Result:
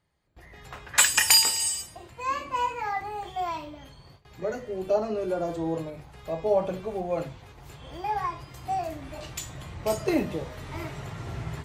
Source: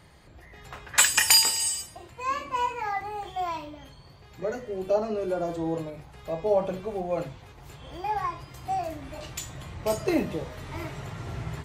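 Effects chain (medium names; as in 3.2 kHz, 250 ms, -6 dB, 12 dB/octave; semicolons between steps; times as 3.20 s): gate with hold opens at -41 dBFS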